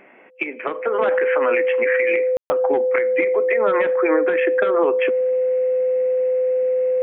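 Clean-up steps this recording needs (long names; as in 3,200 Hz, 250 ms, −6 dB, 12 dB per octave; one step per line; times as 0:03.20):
notch filter 510 Hz, Q 30
ambience match 0:02.37–0:02.50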